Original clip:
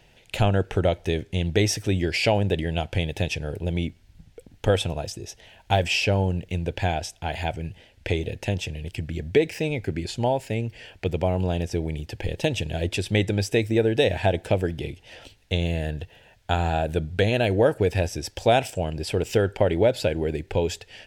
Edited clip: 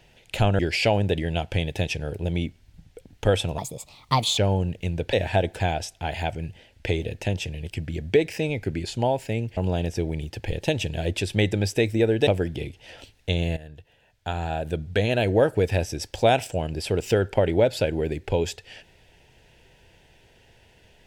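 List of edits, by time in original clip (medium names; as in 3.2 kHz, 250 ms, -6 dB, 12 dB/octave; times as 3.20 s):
0.59–2.00 s: delete
4.99–6.06 s: speed 134%
10.78–11.33 s: delete
14.03–14.50 s: move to 6.81 s
15.80–17.55 s: fade in, from -15.5 dB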